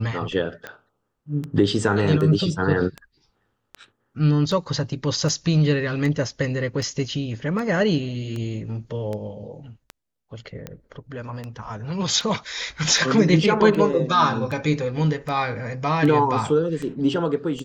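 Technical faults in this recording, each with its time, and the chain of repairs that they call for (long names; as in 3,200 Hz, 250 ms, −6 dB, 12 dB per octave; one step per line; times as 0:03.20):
scratch tick 78 rpm −18 dBFS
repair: click removal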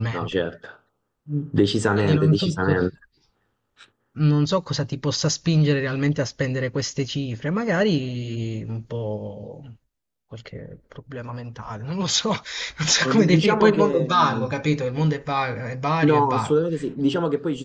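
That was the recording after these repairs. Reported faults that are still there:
none of them is left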